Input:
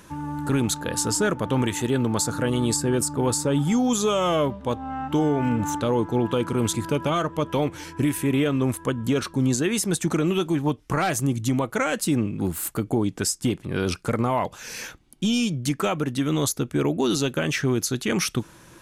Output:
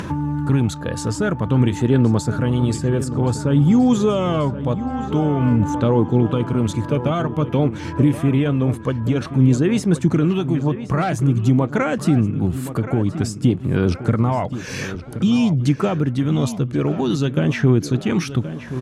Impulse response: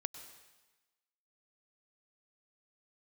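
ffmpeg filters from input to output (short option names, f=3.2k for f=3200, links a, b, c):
-filter_complex "[0:a]highpass=100,aemphasis=mode=reproduction:type=bsi,acompressor=mode=upward:threshold=-20dB:ratio=2.5,aphaser=in_gain=1:out_gain=1:delay=1.8:decay=0.29:speed=0.51:type=sinusoidal,asplit=2[a][b];[b]adelay=1074,lowpass=f=3.4k:p=1,volume=-12dB,asplit=2[c][d];[d]adelay=1074,lowpass=f=3.4k:p=1,volume=0.49,asplit=2[e][f];[f]adelay=1074,lowpass=f=3.4k:p=1,volume=0.49,asplit=2[g][h];[h]adelay=1074,lowpass=f=3.4k:p=1,volume=0.49,asplit=2[i][j];[j]adelay=1074,lowpass=f=3.4k:p=1,volume=0.49[k];[c][e][g][i][k]amix=inputs=5:normalize=0[l];[a][l]amix=inputs=2:normalize=0"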